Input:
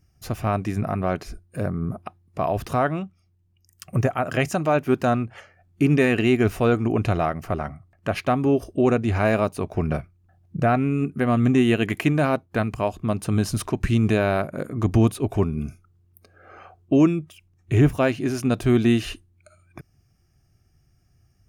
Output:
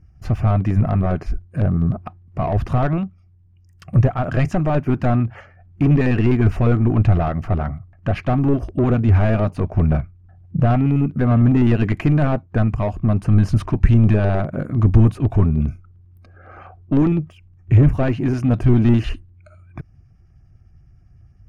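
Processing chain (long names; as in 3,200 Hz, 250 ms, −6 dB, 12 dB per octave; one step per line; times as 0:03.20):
in parallel at −6.5 dB: gain into a clipping stage and back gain 19 dB
on the sum: low-shelf EQ 170 Hz +11.5 dB
auto-filter notch square 9.9 Hz 430–3,700 Hz
mid-hump overdrive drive 21 dB, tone 4,900 Hz, clips at −1 dBFS
RIAA equalisation playback
level −12.5 dB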